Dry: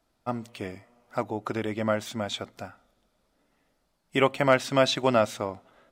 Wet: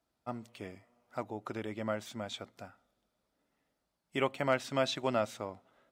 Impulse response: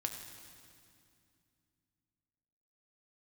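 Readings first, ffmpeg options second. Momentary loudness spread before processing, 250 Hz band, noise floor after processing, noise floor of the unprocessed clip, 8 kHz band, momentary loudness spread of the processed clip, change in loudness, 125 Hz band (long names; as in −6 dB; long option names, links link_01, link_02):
17 LU, −9.0 dB, −83 dBFS, −73 dBFS, −9.0 dB, 17 LU, −9.0 dB, −9.0 dB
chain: -af "highpass=51,volume=-9dB"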